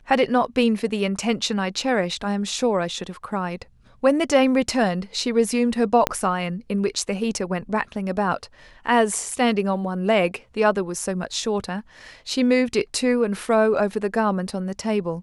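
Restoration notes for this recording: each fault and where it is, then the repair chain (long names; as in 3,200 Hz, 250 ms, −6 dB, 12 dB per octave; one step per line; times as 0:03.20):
0:06.07: click −4 dBFS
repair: click removal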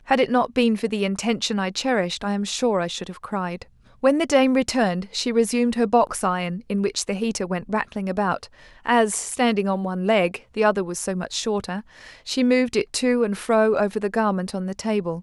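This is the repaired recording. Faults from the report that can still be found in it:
0:06.07: click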